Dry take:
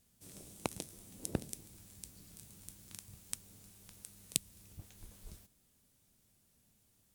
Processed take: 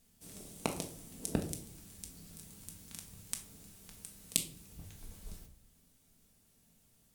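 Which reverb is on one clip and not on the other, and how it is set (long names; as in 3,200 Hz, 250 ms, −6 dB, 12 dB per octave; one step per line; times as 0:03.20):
rectangular room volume 600 cubic metres, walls furnished, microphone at 1.6 metres
level +1.5 dB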